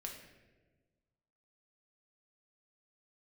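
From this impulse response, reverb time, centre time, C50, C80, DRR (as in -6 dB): 1.3 s, 37 ms, 5.0 dB, 7.5 dB, 0.0 dB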